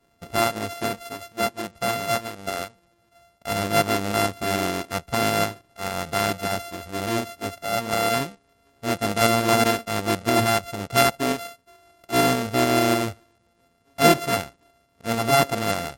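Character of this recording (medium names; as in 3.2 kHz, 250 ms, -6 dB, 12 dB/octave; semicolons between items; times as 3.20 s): a buzz of ramps at a fixed pitch in blocks of 64 samples; tremolo saw up 6.8 Hz, depth 35%; MP3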